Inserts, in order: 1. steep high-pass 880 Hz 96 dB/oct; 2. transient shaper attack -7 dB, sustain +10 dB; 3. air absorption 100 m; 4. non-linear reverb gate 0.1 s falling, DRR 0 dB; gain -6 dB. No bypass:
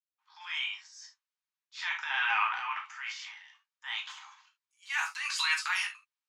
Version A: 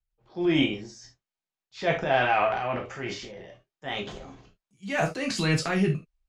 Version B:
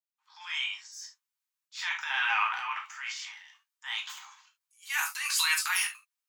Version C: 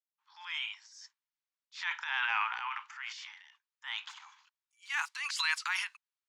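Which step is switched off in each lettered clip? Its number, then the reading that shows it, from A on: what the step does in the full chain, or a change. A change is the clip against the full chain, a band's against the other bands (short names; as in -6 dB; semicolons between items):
1, 1 kHz band +6.0 dB; 3, 8 kHz band +8.5 dB; 4, momentary loudness spread change -2 LU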